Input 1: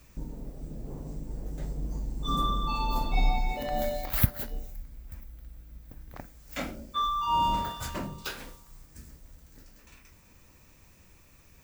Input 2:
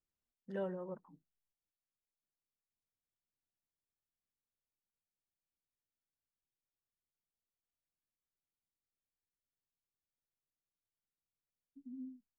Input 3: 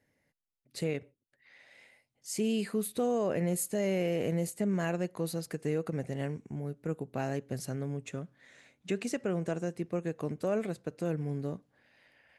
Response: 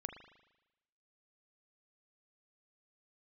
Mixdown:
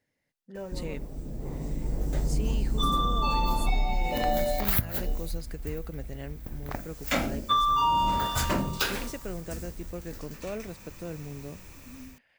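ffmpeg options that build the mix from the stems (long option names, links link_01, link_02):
-filter_complex "[0:a]bandreject=frequency=53.1:width_type=h:width=4,bandreject=frequency=106.2:width_type=h:width=4,bandreject=frequency=159.3:width_type=h:width=4,bandreject=frequency=212.4:width_type=h:width=4,bandreject=frequency=265.5:width_type=h:width=4,bandreject=frequency=318.6:width_type=h:width=4,bandreject=frequency=371.7:width_type=h:width=4,bandreject=frequency=424.8:width_type=h:width=4,bandreject=frequency=477.9:width_type=h:width=4,bandreject=frequency=531:width_type=h:width=4,bandreject=frequency=584.1:width_type=h:width=4,bandreject=frequency=637.2:width_type=h:width=4,bandreject=frequency=690.3:width_type=h:width=4,dynaudnorm=framelen=820:gausssize=3:maxgain=8dB,adelay=550,volume=2dB[link_01];[1:a]volume=0dB[link_02];[2:a]equalizer=frequency=4100:width_type=o:width=1.7:gain=5,volume=-5.5dB[link_03];[link_01][link_02][link_03]amix=inputs=3:normalize=0,acompressor=threshold=-21dB:ratio=12"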